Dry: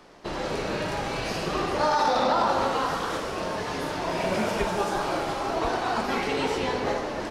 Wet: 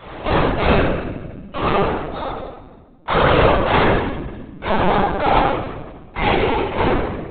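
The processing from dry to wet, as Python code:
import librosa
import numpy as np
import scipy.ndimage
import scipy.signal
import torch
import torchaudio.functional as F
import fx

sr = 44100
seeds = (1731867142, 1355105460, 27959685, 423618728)

p1 = scipy.signal.sosfilt(scipy.signal.butter(4, 69.0, 'highpass', fs=sr, output='sos'), x)
p2 = fx.over_compress(p1, sr, threshold_db=-30.0, ratio=-0.5)
p3 = fx.tube_stage(p2, sr, drive_db=25.0, bias=0.4)
p4 = fx.step_gate(p3, sr, bpm=78, pattern='xx.x....', floor_db=-60.0, edge_ms=4.5)
p5 = p4 + fx.echo_split(p4, sr, split_hz=330.0, low_ms=332, high_ms=131, feedback_pct=52, wet_db=-16, dry=0)
p6 = fx.room_shoebox(p5, sr, seeds[0], volume_m3=540.0, walls='mixed', distance_m=7.2)
p7 = fx.lpc_vocoder(p6, sr, seeds[1], excitation='pitch_kept', order=16)
y = p7 * 10.0 ** (3.5 / 20.0)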